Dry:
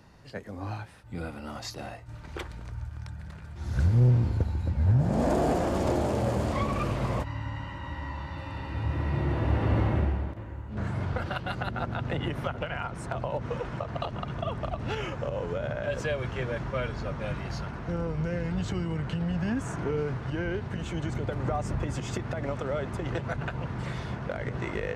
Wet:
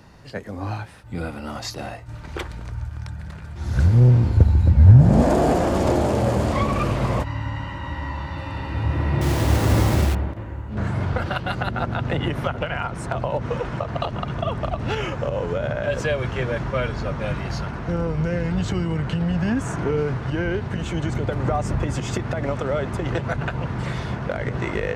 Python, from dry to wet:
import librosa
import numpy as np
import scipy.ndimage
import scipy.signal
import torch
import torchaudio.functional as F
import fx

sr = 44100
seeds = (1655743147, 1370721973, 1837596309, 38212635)

y = fx.low_shelf(x, sr, hz=220.0, db=7.5, at=(4.37, 5.23))
y = fx.quant_dither(y, sr, seeds[0], bits=6, dither='none', at=(9.21, 10.15))
y = y * 10.0 ** (7.0 / 20.0)